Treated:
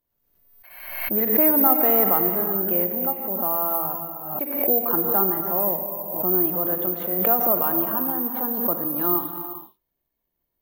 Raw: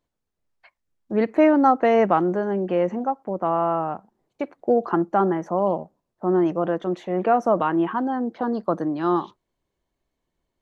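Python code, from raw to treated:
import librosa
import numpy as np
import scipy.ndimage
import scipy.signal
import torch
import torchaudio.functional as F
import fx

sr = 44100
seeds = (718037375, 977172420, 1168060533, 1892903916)

y = fx.rev_gated(x, sr, seeds[0], gate_ms=480, shape='flat', drr_db=5.5)
y = (np.kron(scipy.signal.resample_poly(y, 1, 3), np.eye(3)[0]) * 3)[:len(y)]
y = fx.pre_swell(y, sr, db_per_s=54.0)
y = y * librosa.db_to_amplitude(-6.5)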